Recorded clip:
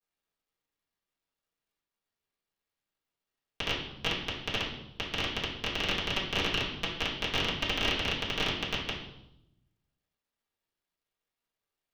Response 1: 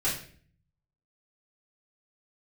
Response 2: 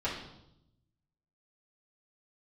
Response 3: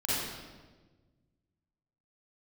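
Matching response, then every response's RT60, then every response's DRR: 2; 0.50, 0.85, 1.4 s; -11.5, -9.5, -10.0 dB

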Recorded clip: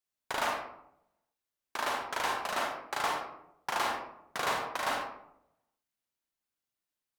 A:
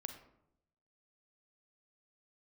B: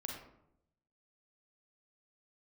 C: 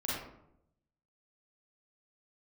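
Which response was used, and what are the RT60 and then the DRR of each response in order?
B; 0.80, 0.80, 0.80 s; 6.5, 0.0, -7.0 dB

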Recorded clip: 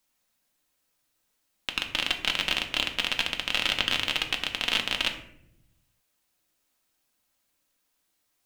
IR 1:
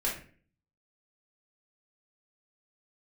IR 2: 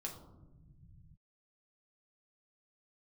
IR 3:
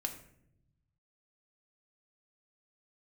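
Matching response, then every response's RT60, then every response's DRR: 3; 0.45, 1.1, 0.75 s; -5.5, -0.5, 3.5 dB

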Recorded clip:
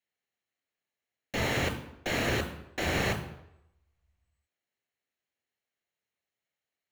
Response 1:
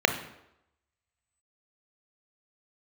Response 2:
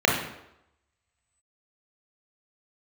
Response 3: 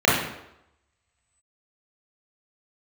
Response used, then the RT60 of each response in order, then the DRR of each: 1; 0.85, 0.85, 0.85 s; 7.0, -2.5, -8.0 dB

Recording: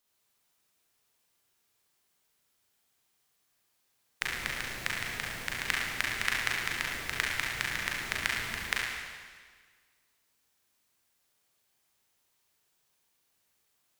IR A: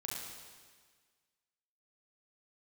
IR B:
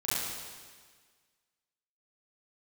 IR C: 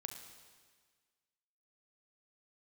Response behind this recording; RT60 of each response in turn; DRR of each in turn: A; 1.6, 1.6, 1.6 s; -3.5, -11.0, 5.0 dB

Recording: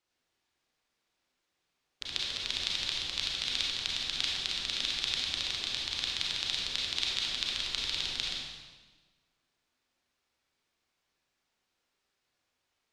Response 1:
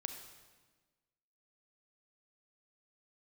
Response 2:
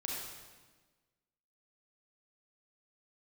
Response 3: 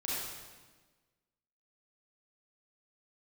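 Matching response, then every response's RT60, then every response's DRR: 2; 1.4, 1.4, 1.4 s; 6.0, -3.5, -7.5 dB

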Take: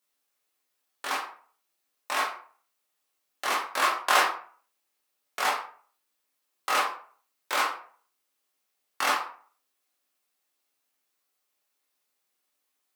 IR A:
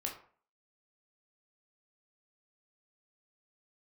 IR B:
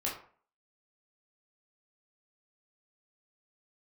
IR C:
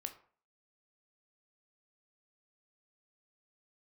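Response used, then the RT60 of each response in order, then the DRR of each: B; 0.45, 0.45, 0.45 s; -0.5, -5.0, 6.0 dB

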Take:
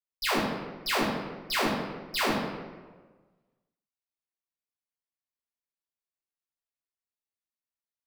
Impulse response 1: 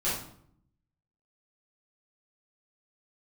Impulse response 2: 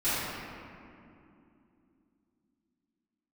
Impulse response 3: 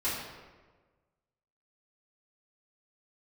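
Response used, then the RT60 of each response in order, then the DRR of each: 3; 0.65, 2.8, 1.4 s; -10.5, -17.5, -11.0 dB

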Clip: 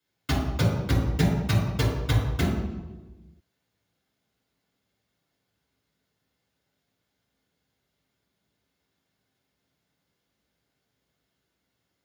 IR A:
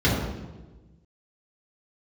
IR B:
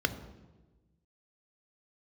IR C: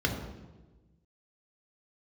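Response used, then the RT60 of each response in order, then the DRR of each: A; 1.2, 1.2, 1.2 s; -7.0, 9.5, 1.5 dB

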